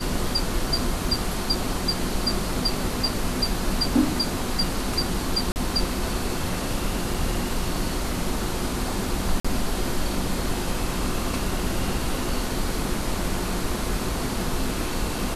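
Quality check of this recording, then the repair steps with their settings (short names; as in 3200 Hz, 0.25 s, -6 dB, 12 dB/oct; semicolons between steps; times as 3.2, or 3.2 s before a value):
5.52–5.56 gap 39 ms
7.14 gap 3.5 ms
9.4–9.45 gap 45 ms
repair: interpolate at 5.52, 39 ms; interpolate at 7.14, 3.5 ms; interpolate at 9.4, 45 ms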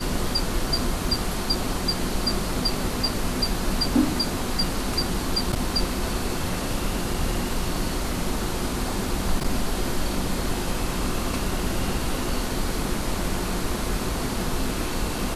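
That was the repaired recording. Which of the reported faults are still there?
none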